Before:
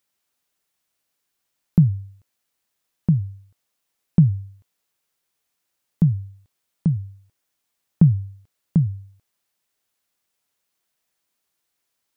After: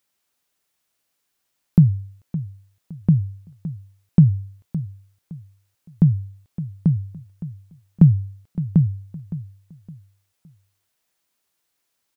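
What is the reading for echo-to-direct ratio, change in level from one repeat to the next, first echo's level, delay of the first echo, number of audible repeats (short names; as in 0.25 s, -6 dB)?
-13.5 dB, -10.5 dB, -14.0 dB, 0.564 s, 3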